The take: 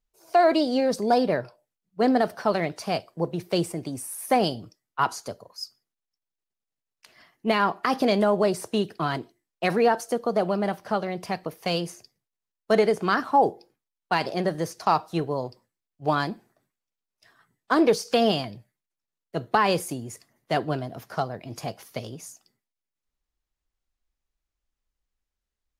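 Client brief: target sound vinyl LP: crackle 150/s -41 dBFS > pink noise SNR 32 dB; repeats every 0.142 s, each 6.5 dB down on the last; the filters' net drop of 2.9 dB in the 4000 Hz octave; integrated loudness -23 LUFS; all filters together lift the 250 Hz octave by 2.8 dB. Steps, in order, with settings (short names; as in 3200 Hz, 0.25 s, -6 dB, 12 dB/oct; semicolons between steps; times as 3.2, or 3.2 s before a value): bell 250 Hz +3.5 dB; bell 4000 Hz -4 dB; feedback echo 0.142 s, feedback 47%, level -6.5 dB; crackle 150/s -41 dBFS; pink noise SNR 32 dB; gain +0.5 dB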